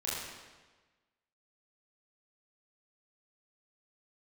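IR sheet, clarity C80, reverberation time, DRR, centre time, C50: 1.0 dB, 1.3 s, -8.0 dB, 99 ms, -2.0 dB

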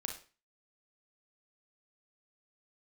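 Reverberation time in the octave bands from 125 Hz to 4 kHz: 0.40 s, 0.40 s, 0.35 s, 0.35 s, 0.35 s, 0.35 s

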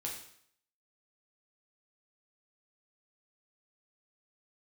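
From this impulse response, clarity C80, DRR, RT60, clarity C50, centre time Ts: 8.5 dB, -2.5 dB, 0.65 s, 5.0 dB, 33 ms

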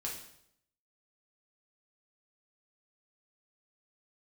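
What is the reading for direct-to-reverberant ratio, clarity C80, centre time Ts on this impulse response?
-3.5 dB, 8.5 dB, 35 ms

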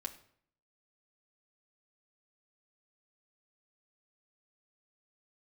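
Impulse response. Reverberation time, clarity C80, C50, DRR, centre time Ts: 0.60 s, 17.0 dB, 14.5 dB, 1.0 dB, 9 ms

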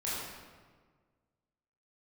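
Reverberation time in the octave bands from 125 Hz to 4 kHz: 1.9 s, 1.8 s, 1.7 s, 1.5 s, 1.3 s, 1.0 s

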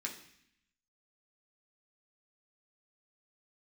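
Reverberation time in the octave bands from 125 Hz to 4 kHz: 0.95 s, 0.95 s, 0.65 s, 0.70 s, 0.90 s, 0.85 s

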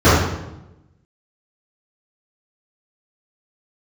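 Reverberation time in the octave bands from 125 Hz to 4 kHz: 1.2 s, 1.2 s, 0.95 s, 0.85 s, 0.75 s, 0.70 s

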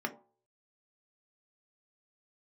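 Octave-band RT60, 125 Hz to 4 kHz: 0.50 s, 0.35 s, 0.45 s, 0.45 s, 0.20 s, 0.15 s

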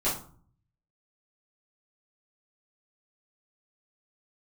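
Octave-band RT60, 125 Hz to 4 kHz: 1.0 s, 0.70 s, 0.45 s, 0.45 s, 0.35 s, 0.30 s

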